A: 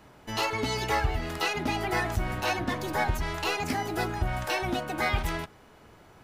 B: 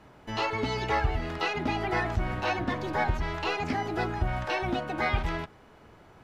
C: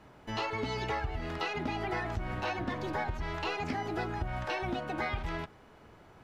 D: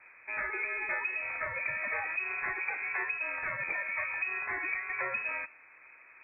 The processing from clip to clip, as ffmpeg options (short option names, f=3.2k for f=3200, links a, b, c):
-filter_complex "[0:a]acrossover=split=6200[a][b];[b]acompressor=threshold=-58dB:ratio=4:attack=1:release=60[c];[a][c]amix=inputs=2:normalize=0,aemphasis=mode=reproduction:type=cd"
-af "acompressor=threshold=-28dB:ratio=6,volume=-2dB"
-af "lowpass=f=2.2k:t=q:w=0.5098,lowpass=f=2.2k:t=q:w=0.6013,lowpass=f=2.2k:t=q:w=0.9,lowpass=f=2.2k:t=q:w=2.563,afreqshift=-2600"